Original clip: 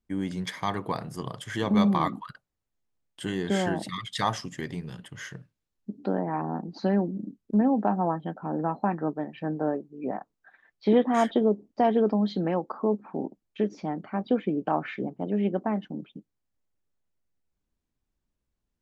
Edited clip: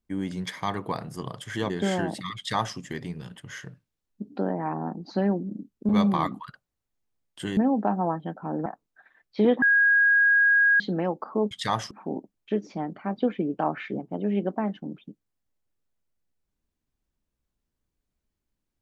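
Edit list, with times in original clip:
1.70–3.38 s: move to 7.57 s
4.05–4.45 s: copy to 12.99 s
8.66–10.14 s: delete
11.10–12.28 s: bleep 1.64 kHz -16 dBFS

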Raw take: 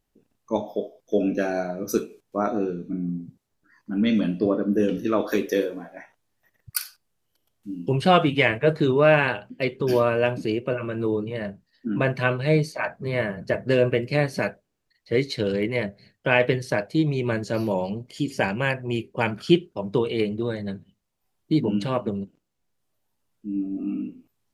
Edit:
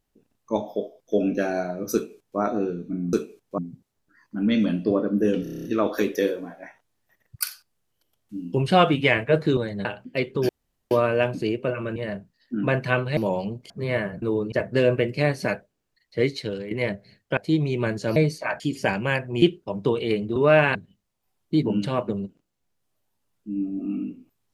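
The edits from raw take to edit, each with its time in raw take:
1.94–2.39 s: copy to 3.13 s
4.98 s: stutter 0.03 s, 8 plays
8.91–9.30 s: swap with 20.45–20.73 s
9.94 s: insert room tone 0.42 s
10.99–11.29 s: move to 13.46 s
12.50–12.94 s: swap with 17.62–18.15 s
15.17–15.65 s: fade out, to -13 dB
16.31–16.83 s: delete
18.97–19.51 s: delete

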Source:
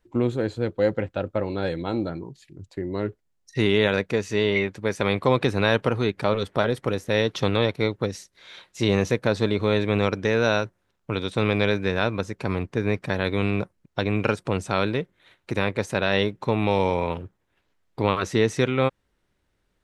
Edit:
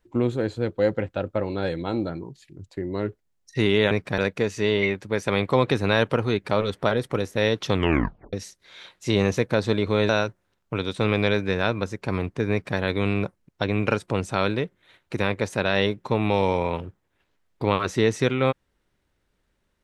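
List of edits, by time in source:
7.46 s: tape stop 0.60 s
9.82–10.46 s: delete
12.88–13.15 s: copy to 3.91 s

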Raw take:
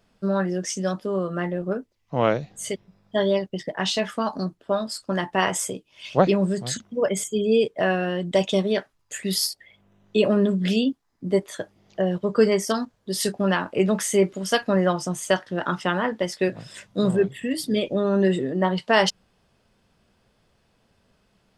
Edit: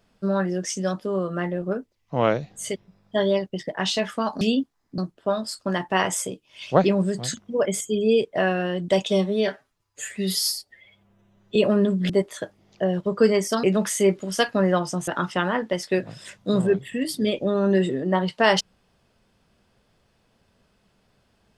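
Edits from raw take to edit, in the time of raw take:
8.51–10.16 s: stretch 1.5×
10.70–11.27 s: move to 4.41 s
12.81–13.77 s: delete
15.21–15.57 s: delete

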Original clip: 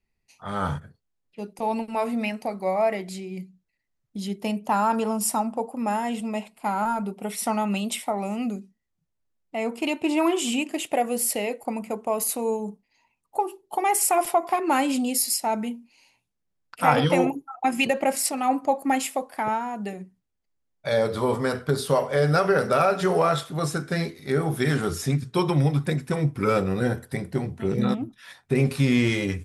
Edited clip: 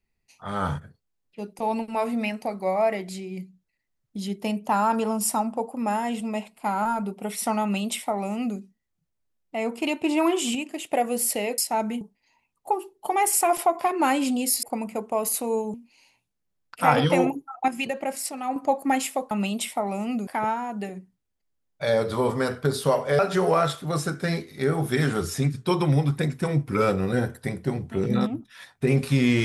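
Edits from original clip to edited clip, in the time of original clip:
7.62–8.58 s: copy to 19.31 s
10.55–10.93 s: gain -4.5 dB
11.58–12.69 s: swap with 15.31–15.74 s
17.68–18.56 s: gain -6 dB
22.23–22.87 s: delete

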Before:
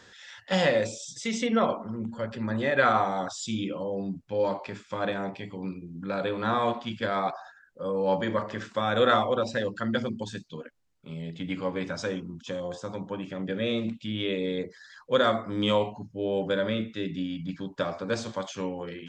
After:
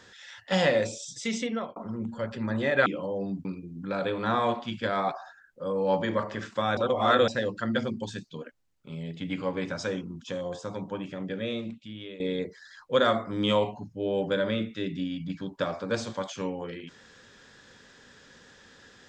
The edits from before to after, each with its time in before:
1.31–1.76 s: fade out
2.86–3.63 s: delete
4.22–5.64 s: delete
8.96–9.47 s: reverse
13.14–14.39 s: fade out, to -15.5 dB

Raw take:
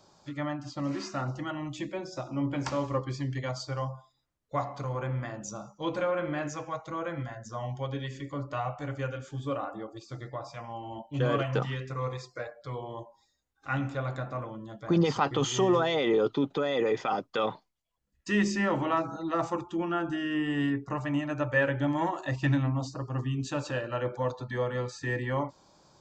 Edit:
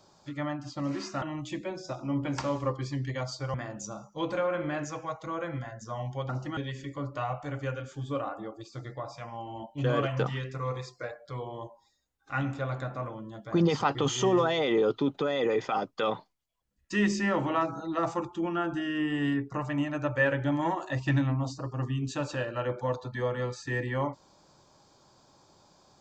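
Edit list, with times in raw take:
1.22–1.50 s: move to 7.93 s
3.82–5.18 s: delete

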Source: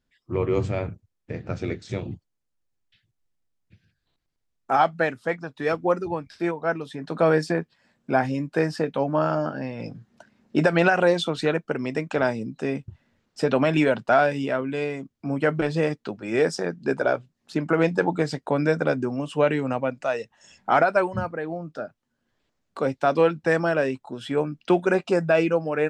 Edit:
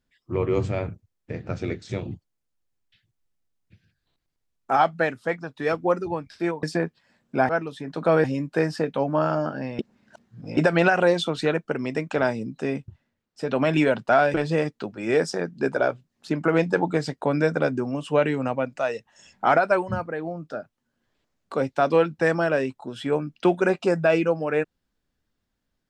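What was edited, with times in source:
6.63–7.38 s: move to 8.24 s
9.79–10.57 s: reverse
12.77–13.69 s: dip -12.5 dB, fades 0.38 s linear
14.34–15.59 s: delete

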